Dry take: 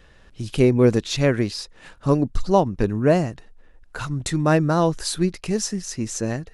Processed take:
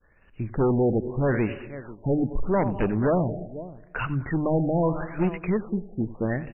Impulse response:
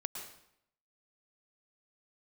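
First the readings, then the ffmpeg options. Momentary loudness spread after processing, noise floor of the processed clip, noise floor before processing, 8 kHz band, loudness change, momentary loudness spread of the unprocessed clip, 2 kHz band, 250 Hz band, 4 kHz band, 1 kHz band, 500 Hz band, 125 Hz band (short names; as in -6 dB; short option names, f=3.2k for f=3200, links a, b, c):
12 LU, -55 dBFS, -51 dBFS, under -40 dB, -4.5 dB, 12 LU, -4.0 dB, -3.5 dB, under -20 dB, -5.0 dB, -4.5 dB, -4.0 dB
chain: -filter_complex "[0:a]agate=range=-33dB:threshold=-43dB:ratio=3:detection=peak,highshelf=f=2.8k:g=11,asplit=2[a][b];[b]adelay=489.8,volume=-20dB,highshelf=f=4k:g=-11[c];[a][c]amix=inputs=2:normalize=0,asplit=2[d][e];[1:a]atrim=start_sample=2205,adelay=92[f];[e][f]afir=irnorm=-1:irlink=0,volume=-15.5dB[g];[d][g]amix=inputs=2:normalize=0,aresample=16000,aresample=44100,volume=18.5dB,asoftclip=hard,volume=-18.5dB,bandreject=f=50:t=h:w=6,bandreject=f=100:t=h:w=6,bandreject=f=150:t=h:w=6,afftfilt=real='re*lt(b*sr/1024,830*pow(3000/830,0.5+0.5*sin(2*PI*0.8*pts/sr)))':imag='im*lt(b*sr/1024,830*pow(3000/830,0.5+0.5*sin(2*PI*0.8*pts/sr)))':win_size=1024:overlap=0.75"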